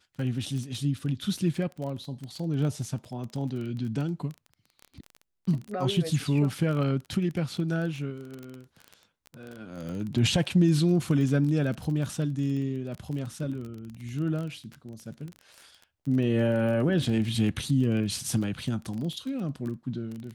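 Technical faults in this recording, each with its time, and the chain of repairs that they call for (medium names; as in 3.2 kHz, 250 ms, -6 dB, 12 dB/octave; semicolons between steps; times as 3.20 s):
crackle 23 per s -33 dBFS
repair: de-click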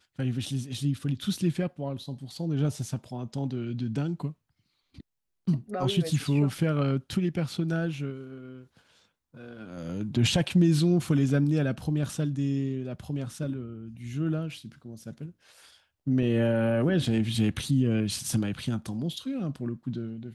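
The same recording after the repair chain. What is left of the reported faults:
nothing left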